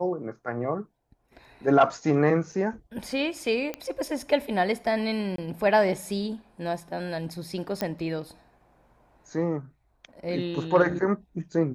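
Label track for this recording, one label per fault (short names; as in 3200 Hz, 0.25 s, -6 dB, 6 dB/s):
2.520000	2.520000	gap 4 ms
3.740000	3.740000	pop -17 dBFS
5.360000	5.380000	gap 23 ms
7.810000	7.810000	pop -14 dBFS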